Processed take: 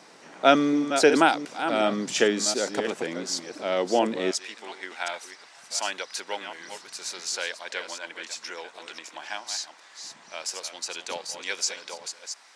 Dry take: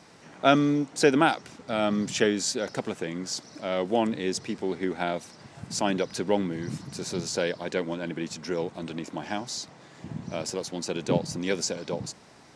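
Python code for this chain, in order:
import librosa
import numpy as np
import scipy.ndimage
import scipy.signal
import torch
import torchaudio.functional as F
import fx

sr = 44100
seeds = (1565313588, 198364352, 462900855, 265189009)

y = fx.reverse_delay(x, sr, ms=363, wet_db=-9)
y = fx.highpass(y, sr, hz=fx.steps((0.0, 290.0), (4.31, 1100.0)), slope=12)
y = y * librosa.db_to_amplitude(3.0)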